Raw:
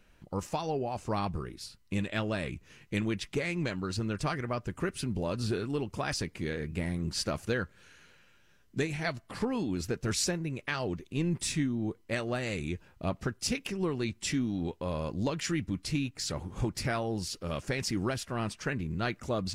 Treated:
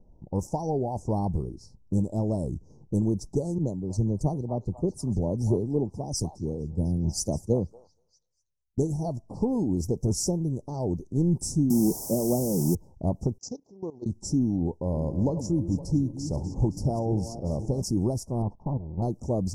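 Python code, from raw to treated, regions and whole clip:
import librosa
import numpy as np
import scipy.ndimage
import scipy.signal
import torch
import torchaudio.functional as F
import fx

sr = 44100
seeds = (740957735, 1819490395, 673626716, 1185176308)

y = fx.chain(x, sr, fx.env_flanger(rest_ms=2.0, full_db=-28.5),
    fx.echo_stepped(ms=239, hz=1100.0, octaves=0.7, feedback_pct=70, wet_db=-0.5),
    fx.band_widen(depth_pct=100), at=(3.58, 8.78))
y = fx.chain(y, sr, fx.ellip_bandpass(low_hz=150.0, high_hz=1300.0, order=3, stop_db=40),
    fx.low_shelf(hz=460.0, db=8.0),
    fx.quant_dither(seeds[0], bits=6, dither='triangular'), at=(11.7, 12.75))
y = fx.chain(y, sr, fx.highpass(hz=600.0, slope=6),
    fx.level_steps(step_db=18),
    fx.resample_bad(factor=3, down='none', up='filtered'), at=(13.38, 14.06))
y = fx.chain(y, sr, fx.reverse_delay_fb(ms=258, feedback_pct=52, wet_db=-11),
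    fx.high_shelf(hz=5600.0, db=-10.0), at=(14.56, 17.82))
y = fx.chain(y, sr, fx.lower_of_two(delay_ms=1.1),
    fx.lowpass_res(hz=1100.0, q=2.2),
    fx.level_steps(step_db=11), at=(18.42, 19.02))
y = scipy.signal.sosfilt(scipy.signal.cheby1(4, 1.0, [890.0, 5500.0], 'bandstop', fs=sr, output='sos'), y)
y = fx.env_lowpass(y, sr, base_hz=2200.0, full_db=-31.0)
y = fx.low_shelf(y, sr, hz=260.0, db=7.5)
y = y * librosa.db_to_amplitude(2.5)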